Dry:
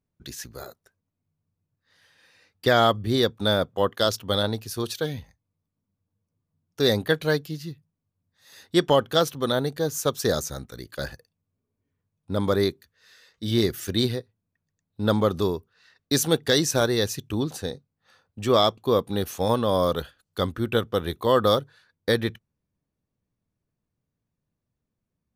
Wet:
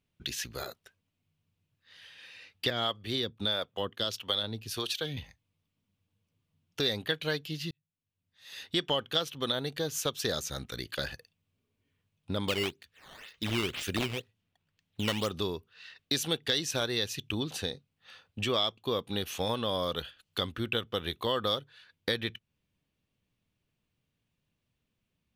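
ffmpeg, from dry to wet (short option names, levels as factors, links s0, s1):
-filter_complex "[0:a]asettb=1/sr,asplit=3[s0][s1][s2];[s0]atrim=end=2.704[s3];[s1]atrim=start=2.7:end=5.17,asetpts=PTS-STARTPTS,afade=t=in:d=0.004:c=qsin,afade=t=out:st=2.466:d=0.004:c=qsin,acrossover=split=400[s4][s5];[s4]aeval=exprs='val(0)*(1-0.7/2+0.7/2*cos(2*PI*1.6*n/s))':c=same[s6];[s5]aeval=exprs='val(0)*(1-0.7/2-0.7/2*cos(2*PI*1.6*n/s))':c=same[s7];[s6][s7]amix=inputs=2:normalize=0[s8];[s2]atrim=start=5.166[s9];[s3][s8]acrossfade=d=0.004:c1=hsin:c2=qsin[s10];[s10][s9]acrossfade=d=0.004:c1=qsin:c2=hsin,asettb=1/sr,asplit=3[s11][s12][s13];[s11]atrim=end=12.484[s14];[s12]atrim=start=12.48:end=15.31,asetpts=PTS-STARTPTS,afade=t=in:d=0.004:c=qsin,afade=t=out:st=2.826:d=0.004:c=qsin,acrusher=samples=10:mix=1:aa=0.000001:lfo=1:lforange=16:lforate=2[s15];[s13]atrim=start=15.306[s16];[s14][s15]acrossfade=d=0.004:c1=hsin:c2=qsin[s17];[s17][s16]acrossfade=d=0.004:c1=qsin:c2=hsin,asplit=2[s18][s19];[s18]atrim=end=7.71,asetpts=PTS-STARTPTS,afade=t=out:st=7.706:d=0.004:c=hsin[s20];[s19]atrim=start=7.71,asetpts=PTS-STARTPTS,afade=t=in:d=1.19[s21];[s20][s21]concat=n=2:v=0:a=1,equalizer=f=2900:t=o:w=1.1:g=14,acompressor=threshold=0.0224:ratio=2.5"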